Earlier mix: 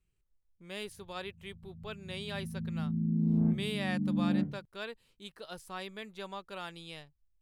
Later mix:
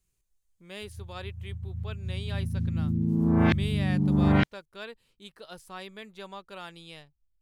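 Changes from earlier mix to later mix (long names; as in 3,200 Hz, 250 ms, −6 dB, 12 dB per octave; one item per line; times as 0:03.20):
background: remove four-pole ladder band-pass 210 Hz, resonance 40%
reverb: off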